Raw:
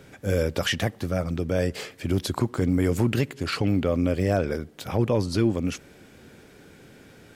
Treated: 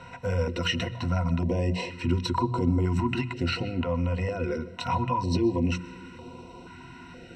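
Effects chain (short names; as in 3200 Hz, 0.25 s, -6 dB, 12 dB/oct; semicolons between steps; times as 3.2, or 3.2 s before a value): air absorption 120 m; notches 60/120/180 Hz; small resonant body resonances 970/2500 Hz, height 18 dB, ringing for 50 ms; limiter -15.5 dBFS, peak gain reduction 6.5 dB; compressor 3:1, threshold -30 dBFS, peak gain reduction 8 dB; ripple EQ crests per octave 2, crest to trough 17 dB; on a send at -16.5 dB: reverb RT60 1.3 s, pre-delay 90 ms; on the sum: stepped notch 2.1 Hz 320–1700 Hz; gain +3 dB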